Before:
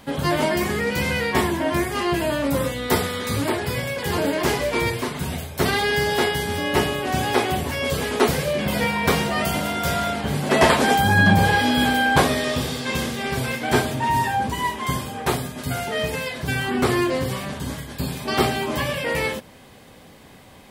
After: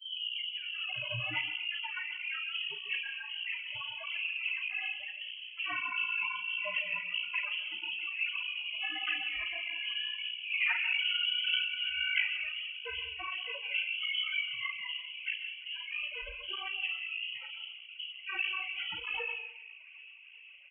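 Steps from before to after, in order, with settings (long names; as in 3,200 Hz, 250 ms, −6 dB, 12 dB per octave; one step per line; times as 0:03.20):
turntable start at the beginning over 0.89 s
gate on every frequency bin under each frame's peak −10 dB strong
low-shelf EQ 150 Hz −6.5 dB
mains-hum notches 50/100/150/200/250/300/350 Hz
formants moved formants +3 semitones
double-tracking delay 38 ms −9.5 dB
delay with a band-pass on its return 390 ms, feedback 81%, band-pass 450 Hz, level −16 dB
on a send at −9.5 dB: convolution reverb RT60 0.65 s, pre-delay 119 ms
on the sum: voice inversion scrambler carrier 3,100 Hz
through-zero flanger with one copy inverted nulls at 1.6 Hz, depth 6.5 ms
level −9 dB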